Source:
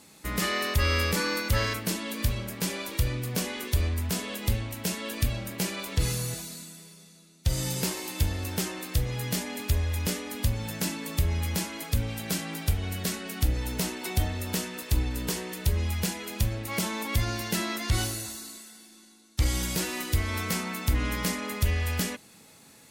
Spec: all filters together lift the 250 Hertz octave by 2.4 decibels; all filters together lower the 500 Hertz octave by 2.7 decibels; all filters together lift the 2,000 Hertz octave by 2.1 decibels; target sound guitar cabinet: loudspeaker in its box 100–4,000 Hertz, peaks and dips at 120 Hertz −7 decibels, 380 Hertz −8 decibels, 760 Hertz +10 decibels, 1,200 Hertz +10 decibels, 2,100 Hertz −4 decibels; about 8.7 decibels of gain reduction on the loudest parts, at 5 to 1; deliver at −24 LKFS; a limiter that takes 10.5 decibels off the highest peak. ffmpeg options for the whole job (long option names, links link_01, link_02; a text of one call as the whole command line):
ffmpeg -i in.wav -af "equalizer=frequency=250:width_type=o:gain=6,equalizer=frequency=500:width_type=o:gain=-4.5,equalizer=frequency=2000:width_type=o:gain=3.5,acompressor=threshold=-29dB:ratio=5,alimiter=level_in=1dB:limit=-24dB:level=0:latency=1,volume=-1dB,highpass=100,equalizer=frequency=120:width_type=q:width=4:gain=-7,equalizer=frequency=380:width_type=q:width=4:gain=-8,equalizer=frequency=760:width_type=q:width=4:gain=10,equalizer=frequency=1200:width_type=q:width=4:gain=10,equalizer=frequency=2100:width_type=q:width=4:gain=-4,lowpass=frequency=4000:width=0.5412,lowpass=frequency=4000:width=1.3066,volume=12.5dB" out.wav